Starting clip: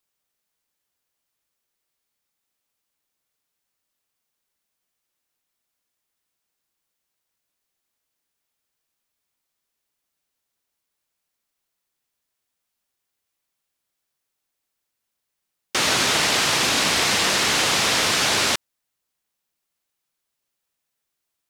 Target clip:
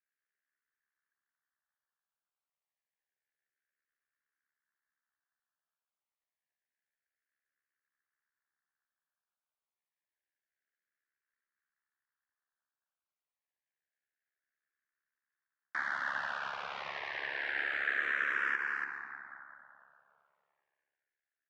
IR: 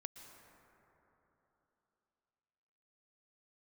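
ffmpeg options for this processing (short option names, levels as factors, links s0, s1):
-filter_complex "[0:a]highpass=f=780:p=1,aecho=1:1:284:0.335,alimiter=limit=0.168:level=0:latency=1:release=132,lowpass=f=1700:t=q:w=6.1,afreqshift=-18[s0];[1:a]atrim=start_sample=2205,asetrate=48510,aresample=44100[s1];[s0][s1]afir=irnorm=-1:irlink=0,aeval=exprs='val(0)*sin(2*PI*35*n/s)':c=same,asplit=2[s2][s3];[s3]afreqshift=-0.28[s4];[s2][s4]amix=inputs=2:normalize=1,volume=0.75"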